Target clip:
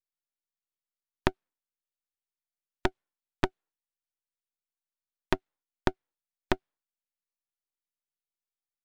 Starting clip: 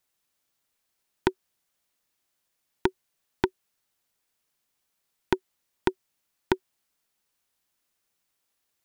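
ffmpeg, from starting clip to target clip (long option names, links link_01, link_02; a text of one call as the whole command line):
ffmpeg -i in.wav -filter_complex "[0:a]afftdn=noise_reduction=20:noise_floor=-58,asplit=2[link_01][link_02];[link_02]asetrate=33038,aresample=44100,atempo=1.33484,volume=-10dB[link_03];[link_01][link_03]amix=inputs=2:normalize=0,aeval=exprs='max(val(0),0)':channel_layout=same" out.wav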